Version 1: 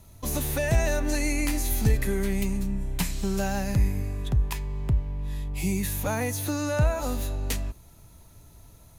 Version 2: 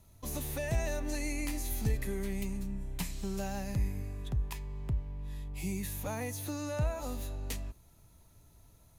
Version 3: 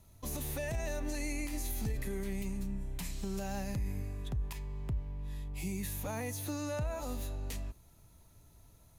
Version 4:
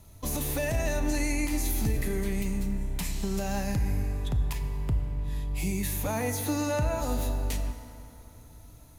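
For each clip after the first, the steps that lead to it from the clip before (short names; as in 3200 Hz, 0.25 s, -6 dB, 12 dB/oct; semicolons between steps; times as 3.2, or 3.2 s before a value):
dynamic EQ 1500 Hz, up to -5 dB, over -53 dBFS, Q 6; gain -9 dB
limiter -28 dBFS, peak gain reduction 7.5 dB
FDN reverb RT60 3.2 s, high-frequency decay 0.55×, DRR 7 dB; gain +7.5 dB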